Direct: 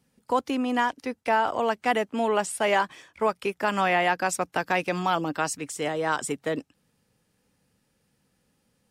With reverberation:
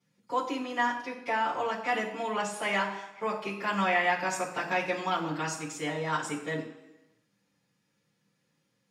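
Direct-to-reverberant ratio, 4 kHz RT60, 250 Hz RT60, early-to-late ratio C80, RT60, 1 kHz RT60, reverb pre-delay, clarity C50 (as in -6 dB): -8.5 dB, 0.95 s, 0.95 s, 10.0 dB, 1.0 s, 1.1 s, 3 ms, 7.5 dB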